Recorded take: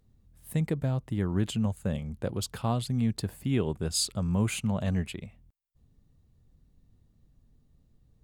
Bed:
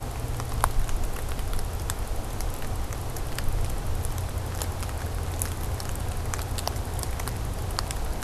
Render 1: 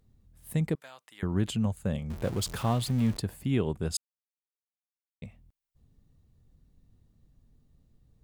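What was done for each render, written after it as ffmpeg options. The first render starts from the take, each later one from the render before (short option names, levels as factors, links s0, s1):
-filter_complex "[0:a]asettb=1/sr,asplit=3[s0][s1][s2];[s0]atrim=end=0.754[s3];[s1]atrim=start=0.75:end=1.23,asetpts=PTS-STARTPTS,afade=t=in:d=0.004:c=qsin,afade=t=out:st=0.476:d=0.004:c=qsin,highpass=1400[s4];[s2]atrim=start=1.226[s5];[s3][s4]acrossfade=d=0.004:c1=hsin:c2=qsin[s6];[s6][s5]acrossfade=d=0.004:c1=qsin:c2=hsin,asettb=1/sr,asplit=3[s7][s8][s9];[s7]atrim=end=2.104[s10];[s8]atrim=start=2.1:end=3.17,asetpts=PTS-STARTPTS,afade=t=in:d=0.004:c=qsin,afade=t=out:st=1.066:d=0.004:c=qsin,aeval=exprs='val(0)+0.5*0.015*sgn(val(0))':c=same[s11];[s9]atrim=start=3.166[s12];[s10][s11]acrossfade=d=0.004:c1=hsin:c2=qsin[s13];[s13][s12]acrossfade=d=0.004:c1=qsin:c2=hsin,asplit=3[s14][s15][s16];[s14]atrim=end=3.97,asetpts=PTS-STARTPTS,afade=t=out:st=3.966:d=0.004:c=hsin[s17];[s15]atrim=start=3.97:end=5.22,asetpts=PTS-STARTPTS,volume=0[s18];[s16]atrim=start=5.22,asetpts=PTS-STARTPTS,afade=t=in:d=0.004:c=hsin[s19];[s17][s18][s19]concat=n=3:v=0:a=1"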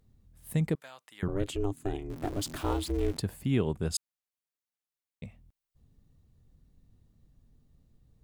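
-filter_complex "[0:a]asettb=1/sr,asplit=3[s0][s1][s2];[s0]atrim=end=1.284[s3];[s1]atrim=start=1.28:end=3.17,asetpts=PTS-STARTPTS,afade=t=in:d=0.004:c=qsin,afade=t=out:st=1.886:d=0.004:c=qsin,aeval=exprs='val(0)*sin(2*PI*200*n/s)':c=same[s4];[s2]atrim=start=3.166[s5];[s3][s4]acrossfade=d=0.004:c1=hsin:c2=qsin[s6];[s6][s5]acrossfade=d=0.004:c1=qsin:c2=hsin"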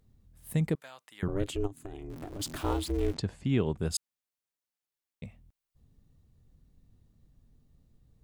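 -filter_complex "[0:a]asplit=3[s0][s1][s2];[s0]afade=t=out:st=1.66:d=0.02[s3];[s1]acompressor=threshold=0.0158:ratio=12:attack=3.2:release=140:knee=1:detection=peak,afade=t=in:st=1.66:d=0.02,afade=t=out:st=2.39:d=0.02[s4];[s2]afade=t=in:st=2.39:d=0.02[s5];[s3][s4][s5]amix=inputs=3:normalize=0,asettb=1/sr,asplit=3[s6][s7][s8];[s6]atrim=end=3.144[s9];[s7]atrim=start=3.14:end=3.78,asetpts=PTS-STARTPTS,afade=t=in:d=0.004:c=qsin,afade=t=out:st=0.636:d=0.004:c=qsin,lowpass=f=7300:w=0.5412,lowpass=f=7300:w=1.3066[s10];[s8]atrim=start=3.776[s11];[s9][s10]acrossfade=d=0.004:c1=hsin:c2=qsin[s12];[s12][s11]acrossfade=d=0.004:c1=qsin:c2=hsin"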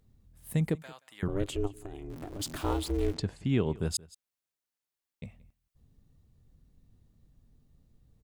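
-af "aecho=1:1:177:0.0794"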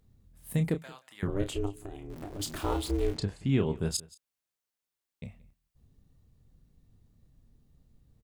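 -filter_complex "[0:a]asplit=2[s0][s1];[s1]adelay=30,volume=0.376[s2];[s0][s2]amix=inputs=2:normalize=0"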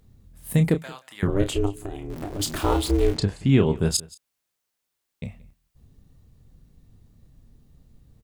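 -af "volume=2.66"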